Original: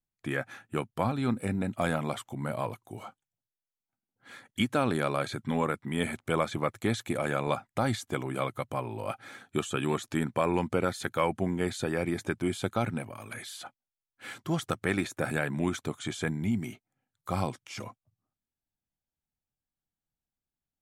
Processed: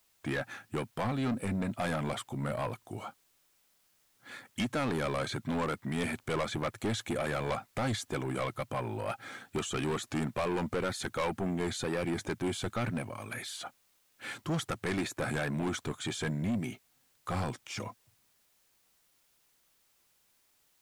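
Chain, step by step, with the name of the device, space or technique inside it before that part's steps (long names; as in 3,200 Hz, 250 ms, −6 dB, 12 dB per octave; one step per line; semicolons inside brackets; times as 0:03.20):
compact cassette (soft clipping −29 dBFS, distortion −7 dB; low-pass filter 11,000 Hz 12 dB per octave; tape wow and flutter; white noise bed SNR 35 dB)
level +2 dB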